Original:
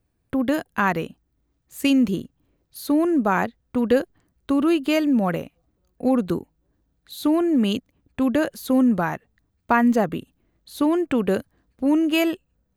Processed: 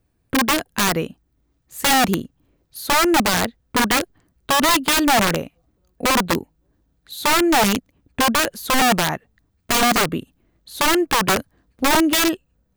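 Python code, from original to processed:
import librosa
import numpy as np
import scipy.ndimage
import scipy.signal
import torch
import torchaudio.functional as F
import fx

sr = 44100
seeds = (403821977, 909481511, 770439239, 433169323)

y = (np.mod(10.0 ** (15.5 / 20.0) * x + 1.0, 2.0) - 1.0) / 10.0 ** (15.5 / 20.0)
y = F.gain(torch.from_numpy(y), 4.0).numpy()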